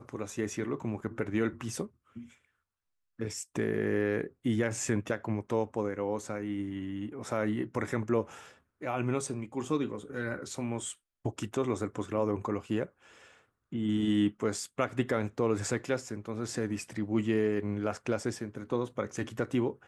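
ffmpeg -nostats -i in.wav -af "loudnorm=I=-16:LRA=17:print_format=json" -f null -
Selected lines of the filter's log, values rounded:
"input_i" : "-33.1",
"input_tp" : "-14.6",
"input_lra" : "2.8",
"input_thresh" : "-43.4",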